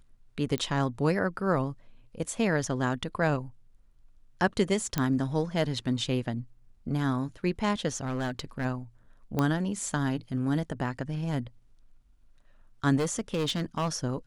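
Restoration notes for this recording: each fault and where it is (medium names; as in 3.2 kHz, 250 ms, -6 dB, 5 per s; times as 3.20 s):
0.58 s: pop -16 dBFS
4.98 s: pop -12 dBFS
7.95–8.66 s: clipped -26.5 dBFS
9.39 s: pop -14 dBFS
12.96–13.89 s: clipped -24 dBFS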